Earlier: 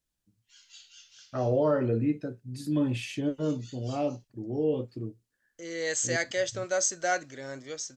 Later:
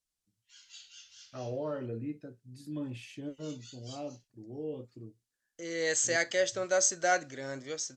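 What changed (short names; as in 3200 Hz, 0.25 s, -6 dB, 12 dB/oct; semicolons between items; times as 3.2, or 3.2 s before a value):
first voice -11.0 dB; reverb: on, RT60 0.35 s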